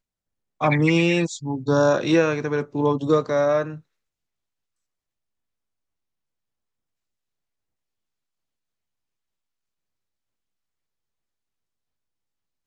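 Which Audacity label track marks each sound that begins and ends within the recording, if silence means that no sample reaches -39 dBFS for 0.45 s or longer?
0.610000	3.780000	sound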